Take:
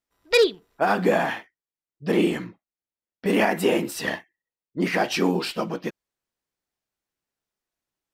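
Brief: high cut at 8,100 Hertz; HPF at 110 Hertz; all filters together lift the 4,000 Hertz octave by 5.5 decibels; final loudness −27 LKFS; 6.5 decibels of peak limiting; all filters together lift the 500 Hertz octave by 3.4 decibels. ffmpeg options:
ffmpeg -i in.wav -af "highpass=110,lowpass=8100,equalizer=frequency=500:width_type=o:gain=4,equalizer=frequency=4000:width_type=o:gain=7,volume=-3.5dB,alimiter=limit=-14dB:level=0:latency=1" out.wav

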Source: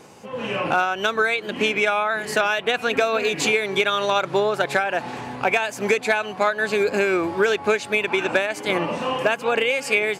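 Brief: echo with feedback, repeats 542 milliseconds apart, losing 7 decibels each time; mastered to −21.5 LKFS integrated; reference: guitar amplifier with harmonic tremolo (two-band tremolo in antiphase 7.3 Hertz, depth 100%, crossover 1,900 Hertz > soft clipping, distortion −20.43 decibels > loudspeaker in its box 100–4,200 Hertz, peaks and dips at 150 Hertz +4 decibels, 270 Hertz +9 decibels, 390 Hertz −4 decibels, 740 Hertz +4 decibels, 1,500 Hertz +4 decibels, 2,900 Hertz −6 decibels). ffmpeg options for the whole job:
ffmpeg -i in.wav -filter_complex "[0:a]aecho=1:1:542|1084|1626|2168|2710:0.447|0.201|0.0905|0.0407|0.0183,acrossover=split=1900[link_01][link_02];[link_01]aeval=exprs='val(0)*(1-1/2+1/2*cos(2*PI*7.3*n/s))':channel_layout=same[link_03];[link_02]aeval=exprs='val(0)*(1-1/2-1/2*cos(2*PI*7.3*n/s))':channel_layout=same[link_04];[link_03][link_04]amix=inputs=2:normalize=0,asoftclip=threshold=-13dB,highpass=100,equalizer=frequency=150:width_type=q:width=4:gain=4,equalizer=frequency=270:width_type=q:width=4:gain=9,equalizer=frequency=390:width_type=q:width=4:gain=-4,equalizer=frequency=740:width_type=q:width=4:gain=4,equalizer=frequency=1500:width_type=q:width=4:gain=4,equalizer=frequency=2900:width_type=q:width=4:gain=-6,lowpass=frequency=4200:width=0.5412,lowpass=frequency=4200:width=1.3066,volume=4dB" out.wav

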